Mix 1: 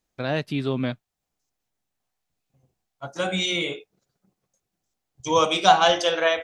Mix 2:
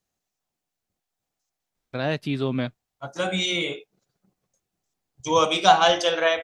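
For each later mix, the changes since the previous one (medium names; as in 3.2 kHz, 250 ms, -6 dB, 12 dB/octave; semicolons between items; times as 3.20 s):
first voice: entry +1.75 s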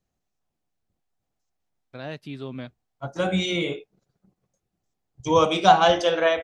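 first voice -9.5 dB; second voice: add tilt EQ -2 dB/octave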